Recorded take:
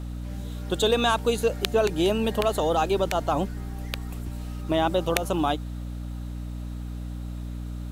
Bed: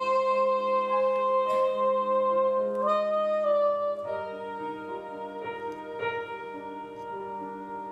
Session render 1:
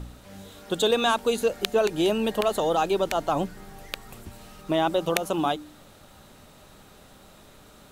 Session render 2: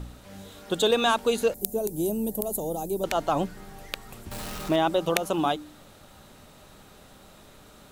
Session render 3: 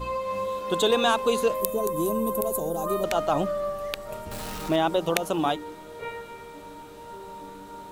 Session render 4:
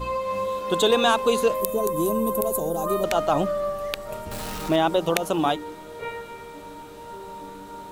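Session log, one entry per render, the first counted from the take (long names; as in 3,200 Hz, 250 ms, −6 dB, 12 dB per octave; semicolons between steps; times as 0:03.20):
hum removal 60 Hz, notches 5
0:01.54–0:03.04: drawn EQ curve 190 Hz 0 dB, 350 Hz −4 dB, 870 Hz −11 dB, 1,300 Hz −26 dB, 3,100 Hz −22 dB, 12,000 Hz +13 dB; 0:04.31–0:04.76: converter with a step at zero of −32 dBFS
mix in bed −5 dB
level +2.5 dB; brickwall limiter −3 dBFS, peak gain reduction 2.5 dB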